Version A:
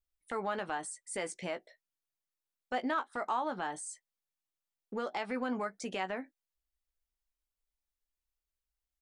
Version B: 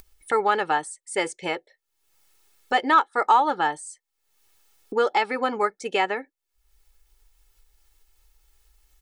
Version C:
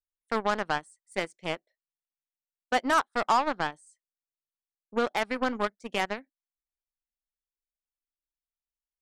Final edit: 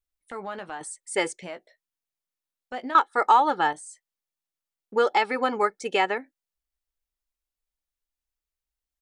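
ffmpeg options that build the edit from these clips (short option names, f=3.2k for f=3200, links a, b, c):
-filter_complex "[1:a]asplit=3[a][b][c];[0:a]asplit=4[d][e][f][g];[d]atrim=end=0.812[h];[a]atrim=start=0.808:end=1.412[i];[e]atrim=start=1.408:end=2.952[j];[b]atrim=start=2.948:end=3.732[k];[f]atrim=start=3.728:end=4.962[l];[c]atrim=start=4.958:end=6.182[m];[g]atrim=start=6.178[n];[h][i]acrossfade=d=0.004:c1=hsin:c2=hsin[o];[o][j]acrossfade=d=0.004:c1=hsin:c2=hsin[p];[p][k]acrossfade=d=0.004:c1=hsin:c2=hsin[q];[q][l]acrossfade=d=0.004:c1=hsin:c2=hsin[r];[r][m]acrossfade=d=0.004:c1=hsin:c2=hsin[s];[s][n]acrossfade=d=0.004:c1=hsin:c2=hsin"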